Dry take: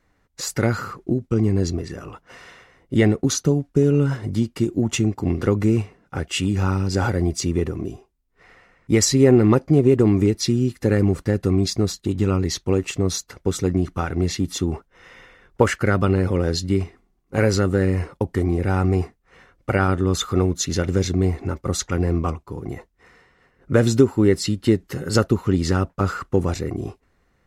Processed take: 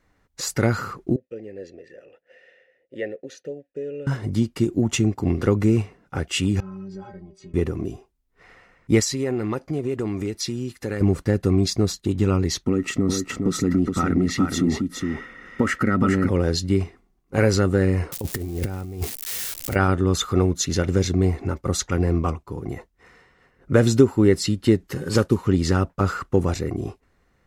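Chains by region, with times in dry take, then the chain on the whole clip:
1.16–4.07 vowel filter e + high shelf 9800 Hz +9 dB
6.6–7.54 compressor 10:1, threshold -23 dBFS + tape spacing loss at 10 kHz 23 dB + metallic resonator 190 Hz, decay 0.2 s, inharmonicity 0.008
9–11.01 low shelf 460 Hz -8 dB + compressor 2:1, threshold -25 dBFS
12.64–16.29 compressor 3:1, threshold -25 dBFS + small resonant body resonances 240/1300/1900 Hz, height 14 dB, ringing for 30 ms + echo 0.414 s -5 dB
18.12–19.76 switching spikes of -23.5 dBFS + bell 1200 Hz -6 dB 1.8 oct + negative-ratio compressor -25 dBFS, ratio -0.5
24.95–25.43 CVSD 64 kbps + notch comb 680 Hz
whole clip: dry

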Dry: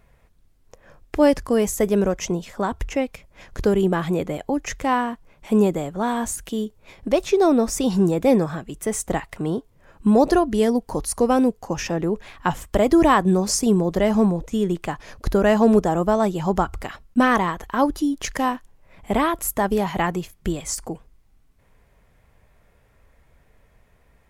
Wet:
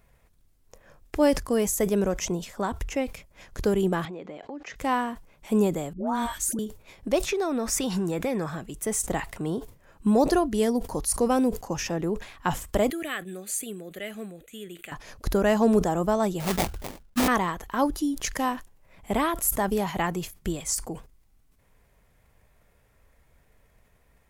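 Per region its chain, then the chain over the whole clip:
4.05–4.76 BPF 230–4700 Hz + air absorption 91 m + compressor 3:1, threshold -32 dBFS
5.93–6.59 comb 3.3 ms, depth 46% + dispersion highs, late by 0.14 s, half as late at 800 Hz
7.28–8.5 bell 1800 Hz +8.5 dB 1.6 oct + compressor 5:1, threshold -18 dBFS
12.9–14.92 HPF 1300 Hz 6 dB/oct + fixed phaser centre 2300 Hz, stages 4
16.4–17.28 LPF 10000 Hz + sample-rate reducer 1500 Hz, jitter 20% + hard clip -13.5 dBFS
whole clip: high shelf 5600 Hz +7.5 dB; sustainer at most 140 dB/s; gain -5 dB

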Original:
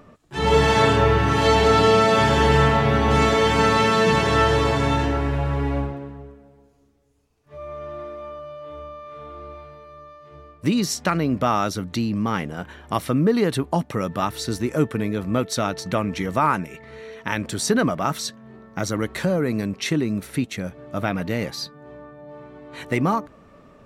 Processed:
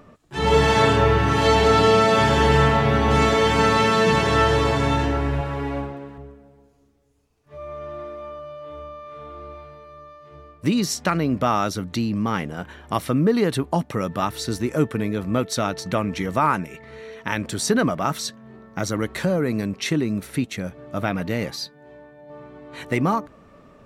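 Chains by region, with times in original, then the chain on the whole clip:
5.41–6.18 low shelf 150 Hz -9.5 dB + mismatched tape noise reduction encoder only
21.56–22.3 low shelf 470 Hz -7 dB + notch 1200 Hz, Q 5.2
whole clip: dry

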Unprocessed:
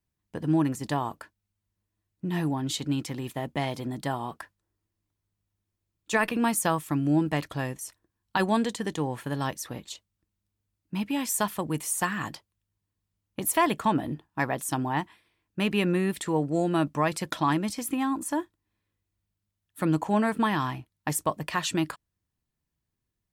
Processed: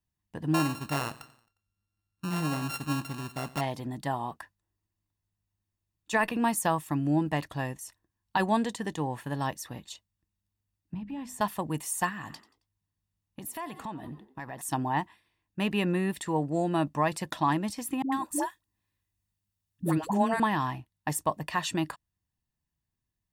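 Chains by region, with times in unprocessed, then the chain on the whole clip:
0.54–3.61 sample sorter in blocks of 32 samples + feedback echo 89 ms, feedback 52%, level -18 dB
10.94–11.41 RIAA curve playback + compressor 4:1, threshold -32 dBFS + notches 50/100/150/200/250/300/350 Hz
12.09–14.61 frequency-shifting echo 90 ms, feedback 36%, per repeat +55 Hz, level -17.5 dB + compressor 5:1, threshold -33 dBFS
18.02–20.4 high shelf 3900 Hz +6.5 dB + dispersion highs, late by 0.102 s, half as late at 520 Hz
whole clip: comb 1.1 ms, depth 34%; dynamic EQ 550 Hz, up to +4 dB, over -36 dBFS, Q 0.76; gain -4 dB

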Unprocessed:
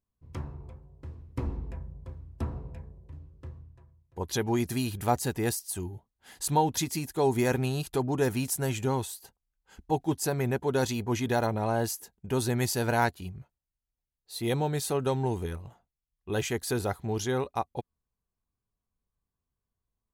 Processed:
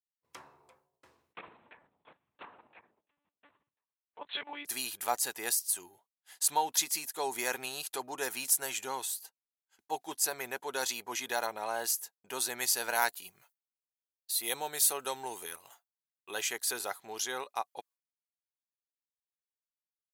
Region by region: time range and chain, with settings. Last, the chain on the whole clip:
1.33–4.65 bell 2500 Hz +6.5 dB 2.4 oct + level quantiser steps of 10 dB + monotone LPC vocoder at 8 kHz 290 Hz
12.95–16.32 high shelf 10000 Hz +11.5 dB + mismatched tape noise reduction encoder only
whole clip: expander -46 dBFS; Bessel high-pass 1000 Hz, order 2; high shelf 5600 Hz +6 dB

